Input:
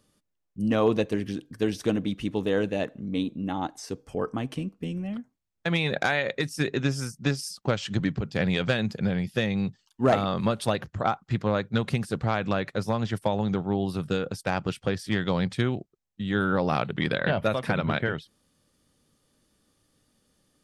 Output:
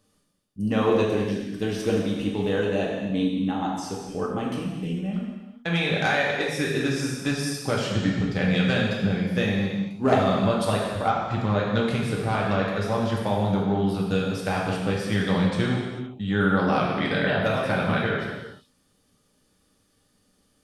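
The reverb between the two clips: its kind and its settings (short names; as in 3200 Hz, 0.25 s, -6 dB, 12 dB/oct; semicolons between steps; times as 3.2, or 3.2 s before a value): non-linear reverb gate 0.47 s falling, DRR -3.5 dB; gain -2 dB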